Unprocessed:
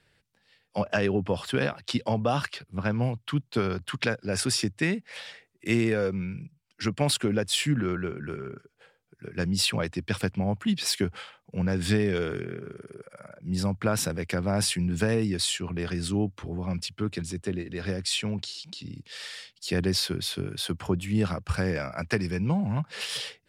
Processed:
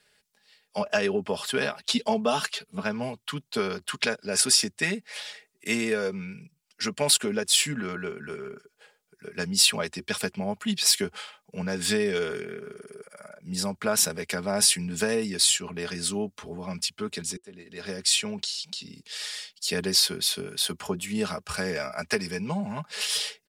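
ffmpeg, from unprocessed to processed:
-filter_complex "[0:a]asettb=1/sr,asplit=3[a][b][c];[a]atrim=end=1.804[d];[b]atrim=start=1.8:end=2.83,asetpts=PTS-STARTPTS,afade=t=in:d=0.004:c=qsin,afade=t=out:st=1.026:d=0.004:c=qsin,aecho=1:1:4.5:0.65,atrim=end_sample=45423[e];[c]atrim=start=2.826[f];[d][e]acrossfade=d=0.004:c1=hsin:c2=qsin[g];[g][f]acrossfade=d=0.004:c1=qsin:c2=hsin,asplit=2[h][i];[h]atrim=end=17.37,asetpts=PTS-STARTPTS,afade=t=out:st=17.366:d=0.004:c=hsin[j];[i]atrim=start=17.37,asetpts=PTS-STARTPTS,afade=t=in:d=0.66[k];[j][k]concat=n=2:v=0:a=1,bass=f=250:g=-10,treble=f=4k:g=8,bandreject=f=360:w=12,aecho=1:1:4.8:0.58"

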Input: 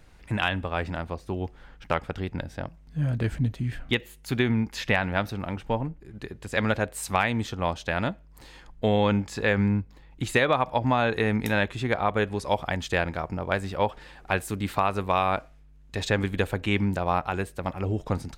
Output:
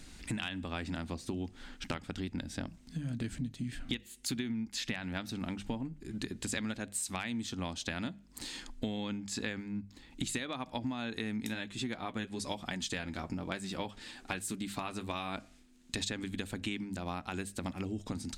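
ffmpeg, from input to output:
-filter_complex "[0:a]asplit=3[a][b][c];[a]afade=t=out:st=11.53:d=0.02[d];[b]flanger=delay=4.9:depth=4:regen=-45:speed=1.1:shape=triangular,afade=t=in:st=11.53:d=0.02,afade=t=out:st=15.34:d=0.02[e];[c]afade=t=in:st=15.34:d=0.02[f];[d][e][f]amix=inputs=3:normalize=0,equalizer=f=125:t=o:w=1:g=-4,equalizer=f=250:t=o:w=1:g=10,equalizer=f=500:t=o:w=1:g=-7,equalizer=f=1k:t=o:w=1:g=-4,equalizer=f=4k:t=o:w=1:g=6,equalizer=f=8k:t=o:w=1:g=11,acompressor=threshold=-35dB:ratio=16,bandreject=f=50:t=h:w=6,bandreject=f=100:t=h:w=6,bandreject=f=150:t=h:w=6,bandreject=f=200:t=h:w=6,volume=2dB"

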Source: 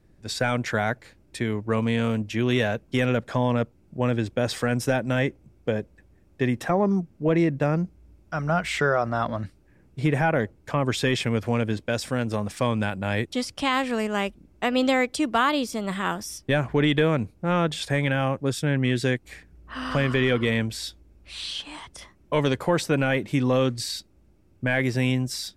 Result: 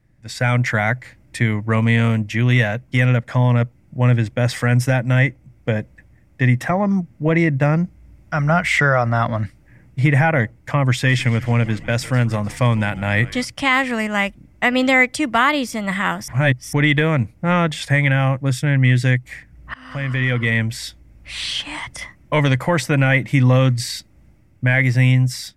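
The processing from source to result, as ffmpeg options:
-filter_complex "[0:a]asettb=1/sr,asplit=3[a][b][c];[a]atrim=end=10.914[d];[b]atrim=start=10.91:end=13.45,asetpts=PTS-STARTPTS,afade=t=in:d=0.004:c=qsin,afade=t=out:st=2.536:d=0.004:c=qsin,asplit=6[e][f][g][h][i][j];[f]adelay=152,afreqshift=-130,volume=-18dB[k];[g]adelay=304,afreqshift=-260,volume=-22.6dB[l];[h]adelay=456,afreqshift=-390,volume=-27.2dB[m];[i]adelay=608,afreqshift=-520,volume=-31.7dB[n];[j]adelay=760,afreqshift=-650,volume=-36.3dB[o];[e][k][l][m][n][o]amix=inputs=6:normalize=0,atrim=end_sample=112014[p];[c]atrim=start=13.446[q];[d][p]acrossfade=d=0.004:c1=hsin:c2=qsin[r];[r][q]acrossfade=d=0.004:c1=qsin:c2=hsin,asplit=4[s][t][u][v];[s]atrim=end=16.282[w];[t]atrim=start=16.278:end=16.732,asetpts=PTS-STARTPTS,areverse[x];[u]atrim=start=16.728:end=19.74,asetpts=PTS-STARTPTS,afade=t=out:st=3.008:d=0.004:c=hsin:silence=0.0668344[y];[v]atrim=start=19.74,asetpts=PTS-STARTPTS,afade=t=in:d=1.7:silence=0.0668344[z];[w][x]acrossfade=d=0.004:c1=hsin:c2=hsin[aa];[y][z]concat=n=2:v=0:a=1[ab];[aa][ab]acrossfade=d=0.004:c1=hsin:c2=hsin,equalizer=f=125:t=o:w=0.33:g=10,equalizer=f=400:t=o:w=0.33:g=-11,equalizer=f=2k:t=o:w=0.33:g=10,equalizer=f=4k:t=o:w=0.33:g=-4,dynaudnorm=f=250:g=3:m=11.5dB,volume=-2.5dB"

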